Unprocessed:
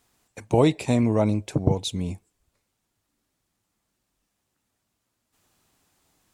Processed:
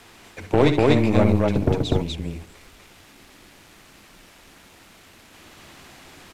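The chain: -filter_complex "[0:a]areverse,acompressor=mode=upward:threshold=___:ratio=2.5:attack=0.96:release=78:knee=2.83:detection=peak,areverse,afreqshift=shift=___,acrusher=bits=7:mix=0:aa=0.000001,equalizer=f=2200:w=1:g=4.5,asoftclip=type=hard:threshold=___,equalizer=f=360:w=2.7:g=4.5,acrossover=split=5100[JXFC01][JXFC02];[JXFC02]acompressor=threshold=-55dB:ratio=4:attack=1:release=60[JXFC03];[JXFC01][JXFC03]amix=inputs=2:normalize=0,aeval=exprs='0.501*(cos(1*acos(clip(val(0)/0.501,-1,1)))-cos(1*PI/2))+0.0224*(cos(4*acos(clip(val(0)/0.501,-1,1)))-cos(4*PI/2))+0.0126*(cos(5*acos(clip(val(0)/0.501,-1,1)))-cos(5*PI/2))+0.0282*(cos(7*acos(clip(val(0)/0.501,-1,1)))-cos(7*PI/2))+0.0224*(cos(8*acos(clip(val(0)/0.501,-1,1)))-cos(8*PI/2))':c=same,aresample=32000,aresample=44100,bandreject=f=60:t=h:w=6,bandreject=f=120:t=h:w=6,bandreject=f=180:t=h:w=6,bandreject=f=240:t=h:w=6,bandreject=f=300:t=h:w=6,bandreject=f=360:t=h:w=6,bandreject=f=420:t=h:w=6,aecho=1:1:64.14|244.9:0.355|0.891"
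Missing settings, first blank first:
-26dB, -13, -8.5dB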